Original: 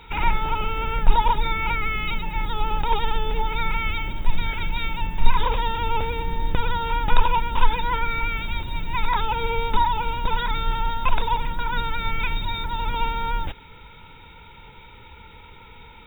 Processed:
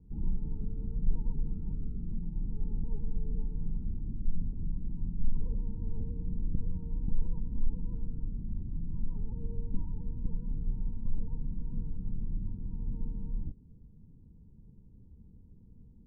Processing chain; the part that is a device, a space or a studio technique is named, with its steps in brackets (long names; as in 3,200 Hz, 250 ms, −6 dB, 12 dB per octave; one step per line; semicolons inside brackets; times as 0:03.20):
overdriven synthesiser ladder filter (soft clipping −9 dBFS, distortion −15 dB; transistor ladder low-pass 270 Hz, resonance 40%)
level +1 dB